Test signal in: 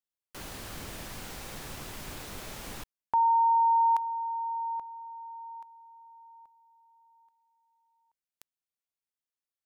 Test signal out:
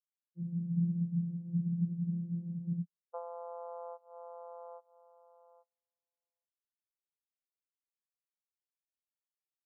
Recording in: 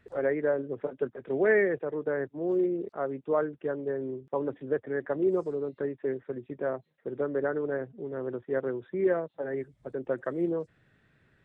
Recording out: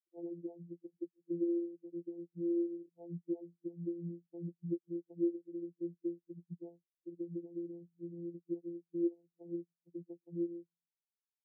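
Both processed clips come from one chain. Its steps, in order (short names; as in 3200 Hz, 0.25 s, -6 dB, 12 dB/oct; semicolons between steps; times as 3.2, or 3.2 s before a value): frequency-shifting echo 0.104 s, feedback 53%, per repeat -57 Hz, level -21.5 dB; vocoder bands 8, saw 171 Hz; compressor 10:1, threshold -35 dBFS; high shelf 2100 Hz -11 dB; spectral expander 4:1; gain +2 dB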